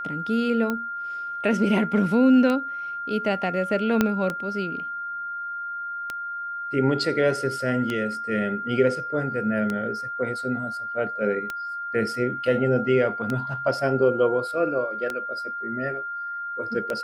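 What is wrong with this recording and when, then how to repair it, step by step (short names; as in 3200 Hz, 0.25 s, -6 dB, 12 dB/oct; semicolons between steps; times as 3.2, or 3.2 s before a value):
tick 33 1/3 rpm -14 dBFS
tone 1400 Hz -29 dBFS
4.01 pop -6 dBFS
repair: de-click; notch 1400 Hz, Q 30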